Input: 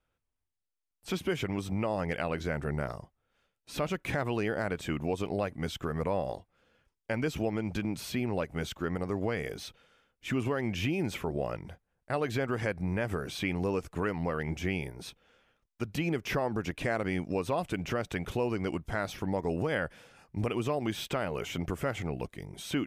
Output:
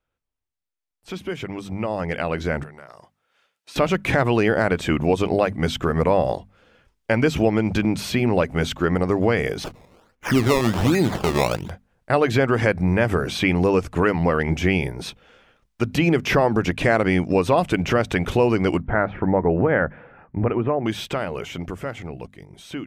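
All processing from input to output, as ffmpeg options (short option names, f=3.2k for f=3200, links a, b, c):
-filter_complex "[0:a]asettb=1/sr,asplit=3[a][b][c];[a]atrim=end=2.634[d];[b]atrim=start=2.63:end=3.76,asetpts=PTS-STARTPTS,afade=t=in:d=0.004:c=qsin,afade=t=out:st=1.126:d=0.004:c=qsin,highpass=f=950:p=1,acompressor=threshold=-50dB:ratio=4:attack=3.2:release=140:knee=1:detection=peak[e];[c]atrim=start=3.756[f];[d][e]acrossfade=d=0.004:c1=hsin:c2=qsin[g];[g][f]acrossfade=d=0.004:c1=qsin:c2=hsin,asettb=1/sr,asplit=3[h][i][j];[h]atrim=end=9.644[k];[i]atrim=start=9.64:end=11.7,asetpts=PTS-STARTPTS,afade=t=in:d=0.004:c=qsin,afade=t=out:st=2.056:d=0.004:c=qsin,lowpass=12k,acrusher=samples=20:mix=1:aa=0.000001:lfo=1:lforange=20:lforate=1.3[l];[j]atrim=start=11.696[m];[k][l]acrossfade=d=0.004:c1=hsin:c2=qsin[n];[n][m]acrossfade=d=0.004:c1=qsin:c2=hsin,asettb=1/sr,asplit=3[o][p][q];[o]atrim=end=18.814[r];[p]atrim=start=18.81:end=20.86,asetpts=PTS-STARTPTS,afade=t=in:d=0.004:c=qsin,afade=t=out:st=2.046:d=0.004:c=qsin,lowpass=f=1.9k:w=0.5412,lowpass=f=1.9k:w=1.3066,bandreject=f=1.1k:w=22[s];[q]atrim=start=20.856[t];[r][s]acrossfade=d=0.004:c1=hsin:c2=qsin[u];[u][t]acrossfade=d=0.004:c1=qsin:c2=hsin,highshelf=f=8.3k:g=-8.5,bandreject=f=50:t=h:w=6,bandreject=f=100:t=h:w=6,bandreject=f=150:t=h:w=6,bandreject=f=200:t=h:w=6,bandreject=f=250:t=h:w=6,dynaudnorm=f=280:g=17:m=13dB"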